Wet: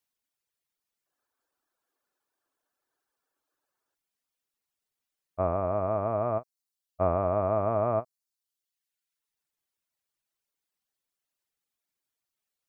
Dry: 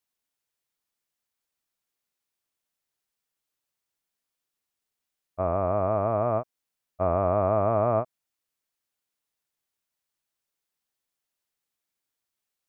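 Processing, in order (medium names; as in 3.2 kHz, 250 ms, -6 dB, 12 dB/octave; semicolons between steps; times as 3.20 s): reverb removal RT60 1 s; time-frequency box 1.06–3.94 s, 250–1800 Hz +11 dB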